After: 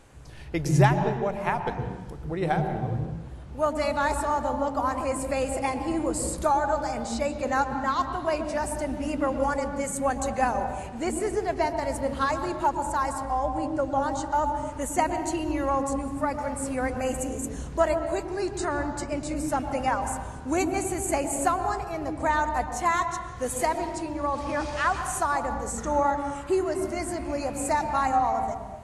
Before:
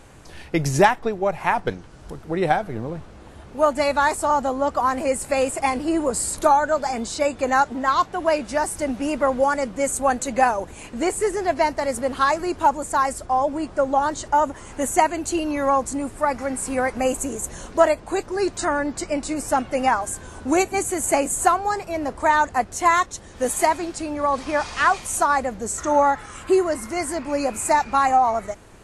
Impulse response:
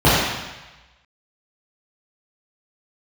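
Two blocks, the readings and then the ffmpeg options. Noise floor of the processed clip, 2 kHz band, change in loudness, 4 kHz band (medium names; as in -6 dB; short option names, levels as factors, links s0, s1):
-39 dBFS, -6.5 dB, -5.5 dB, -6.5 dB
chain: -filter_complex "[0:a]asplit=2[s0][s1];[1:a]atrim=start_sample=2205,lowshelf=f=250:g=11.5,adelay=107[s2];[s1][s2]afir=irnorm=-1:irlink=0,volume=0.0168[s3];[s0][s3]amix=inputs=2:normalize=0,volume=0.447"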